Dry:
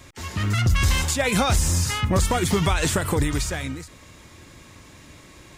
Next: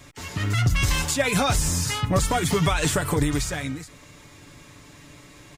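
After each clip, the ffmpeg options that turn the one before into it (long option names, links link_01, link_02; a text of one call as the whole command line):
ffmpeg -i in.wav -af "aecho=1:1:6.9:0.54,volume=-1.5dB" out.wav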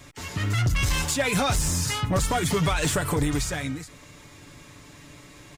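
ffmpeg -i in.wav -af "asoftclip=type=tanh:threshold=-16dB" out.wav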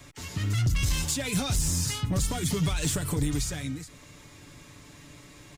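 ffmpeg -i in.wav -filter_complex "[0:a]acrossover=split=330|3000[link_01][link_02][link_03];[link_02]acompressor=threshold=-55dB:ratio=1.5[link_04];[link_01][link_04][link_03]amix=inputs=3:normalize=0,volume=-1.5dB" out.wav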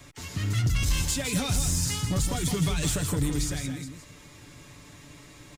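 ffmpeg -i in.wav -af "aecho=1:1:163:0.447" out.wav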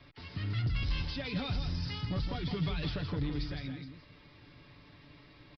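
ffmpeg -i in.wav -af "aresample=11025,aresample=44100,volume=-7dB" out.wav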